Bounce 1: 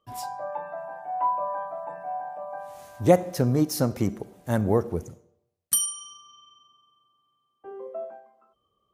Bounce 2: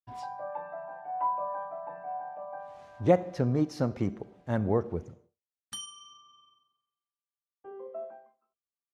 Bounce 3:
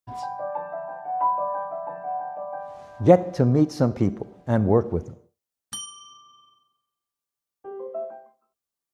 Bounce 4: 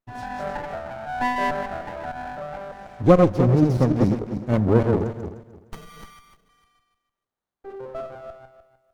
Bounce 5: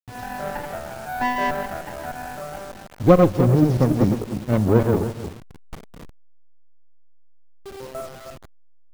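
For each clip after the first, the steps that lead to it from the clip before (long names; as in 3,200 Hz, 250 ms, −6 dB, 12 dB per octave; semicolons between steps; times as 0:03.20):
low-pass filter 3,600 Hz 12 dB per octave; downward expander −51 dBFS; level −4.5 dB
parametric band 2,400 Hz −5 dB 1.6 octaves; level +8 dB
feedback delay that plays each chunk backwards 151 ms, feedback 44%, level −3 dB; windowed peak hold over 17 samples
hold until the input has moved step −35.5 dBFS; level +1 dB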